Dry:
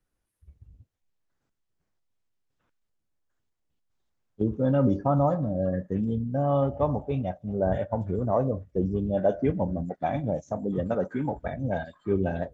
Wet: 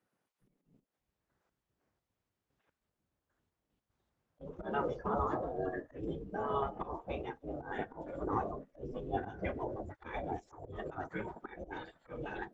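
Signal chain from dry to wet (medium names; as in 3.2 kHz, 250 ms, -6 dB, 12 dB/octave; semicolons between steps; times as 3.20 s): slow attack 145 ms; spectral gate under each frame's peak -15 dB weak; treble shelf 2.7 kHz -11.5 dB; trim +5.5 dB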